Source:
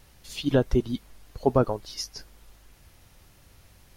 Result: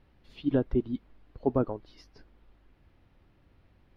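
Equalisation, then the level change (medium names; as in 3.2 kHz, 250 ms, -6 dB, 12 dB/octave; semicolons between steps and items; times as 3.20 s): distance through air 400 m; peaking EQ 290 Hz +6.5 dB 0.9 oct; treble shelf 6.3 kHz +5.5 dB; -7.0 dB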